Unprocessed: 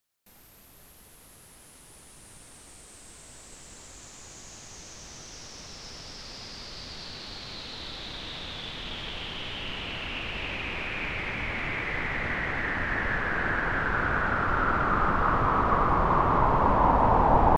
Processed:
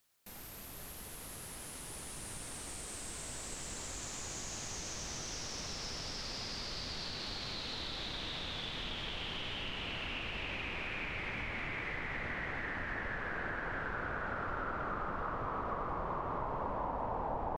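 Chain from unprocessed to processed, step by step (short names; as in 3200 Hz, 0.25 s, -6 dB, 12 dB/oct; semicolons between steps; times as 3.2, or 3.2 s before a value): dynamic EQ 550 Hz, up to +5 dB, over -36 dBFS, Q 1.3; compressor 5:1, threshold -44 dBFS, peak gain reduction 25.5 dB; gain +5.5 dB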